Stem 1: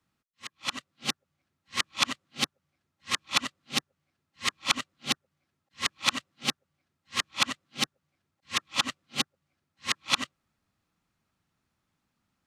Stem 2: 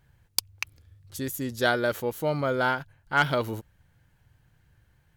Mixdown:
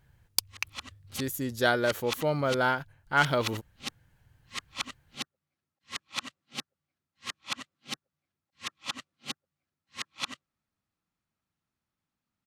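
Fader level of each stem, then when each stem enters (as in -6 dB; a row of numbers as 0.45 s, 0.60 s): -9.0 dB, -1.0 dB; 0.10 s, 0.00 s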